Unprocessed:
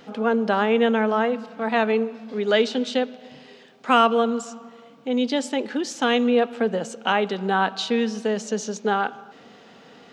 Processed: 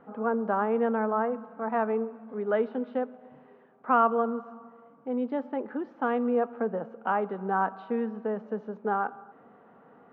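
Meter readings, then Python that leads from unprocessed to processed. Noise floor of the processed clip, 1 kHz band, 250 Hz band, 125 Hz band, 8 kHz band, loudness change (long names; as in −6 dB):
−57 dBFS, −4.5 dB, −7.5 dB, can't be measured, below −40 dB, −6.5 dB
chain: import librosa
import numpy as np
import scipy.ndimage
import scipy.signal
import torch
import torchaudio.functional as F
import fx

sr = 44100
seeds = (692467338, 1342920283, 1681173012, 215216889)

y = fx.ladder_lowpass(x, sr, hz=1500.0, resonance_pct=35)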